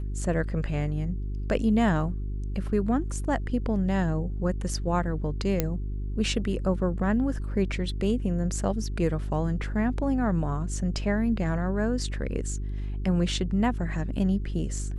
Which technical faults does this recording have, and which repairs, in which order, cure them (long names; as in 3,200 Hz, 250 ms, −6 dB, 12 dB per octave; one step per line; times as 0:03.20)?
mains hum 50 Hz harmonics 8 −31 dBFS
0:05.60: click −9 dBFS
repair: click removal
hum removal 50 Hz, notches 8